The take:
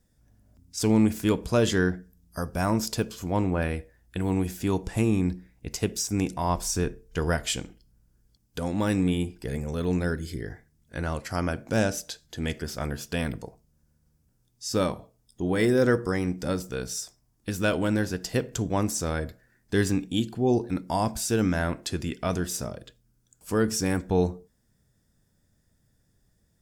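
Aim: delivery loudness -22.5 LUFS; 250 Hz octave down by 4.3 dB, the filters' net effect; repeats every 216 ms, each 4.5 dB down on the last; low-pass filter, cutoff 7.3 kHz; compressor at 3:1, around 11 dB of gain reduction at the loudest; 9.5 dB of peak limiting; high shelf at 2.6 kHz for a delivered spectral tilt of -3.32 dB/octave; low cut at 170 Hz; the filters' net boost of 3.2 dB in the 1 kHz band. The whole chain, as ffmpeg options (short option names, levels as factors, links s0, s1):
-af "highpass=170,lowpass=7300,equalizer=f=250:t=o:g=-4.5,equalizer=f=1000:t=o:g=3.5,highshelf=f=2600:g=6,acompressor=threshold=0.02:ratio=3,alimiter=level_in=1.33:limit=0.0631:level=0:latency=1,volume=0.75,aecho=1:1:216|432|648|864|1080|1296|1512|1728|1944:0.596|0.357|0.214|0.129|0.0772|0.0463|0.0278|0.0167|0.01,volume=5.96"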